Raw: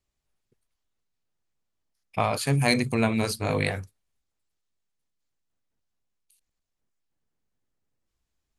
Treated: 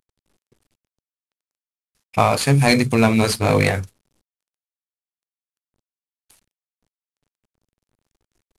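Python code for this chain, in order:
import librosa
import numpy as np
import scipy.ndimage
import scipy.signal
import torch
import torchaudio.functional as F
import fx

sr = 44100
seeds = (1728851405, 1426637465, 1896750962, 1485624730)

p1 = fx.cvsd(x, sr, bps=64000)
p2 = fx.rider(p1, sr, range_db=10, speed_s=0.5)
p3 = p1 + (p2 * 10.0 ** (2.0 / 20.0))
y = p3 * 10.0 ** (2.0 / 20.0)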